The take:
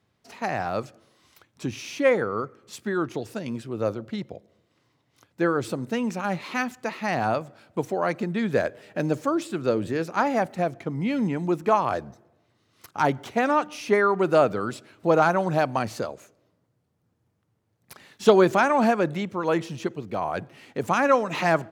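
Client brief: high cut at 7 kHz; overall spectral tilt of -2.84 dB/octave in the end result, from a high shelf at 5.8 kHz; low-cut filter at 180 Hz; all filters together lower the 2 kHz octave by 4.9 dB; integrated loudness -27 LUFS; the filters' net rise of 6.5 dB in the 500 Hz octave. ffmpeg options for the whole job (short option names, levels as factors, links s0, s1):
-af "highpass=180,lowpass=7000,equalizer=f=500:t=o:g=8.5,equalizer=f=2000:t=o:g=-8,highshelf=f=5800:g=4,volume=0.501"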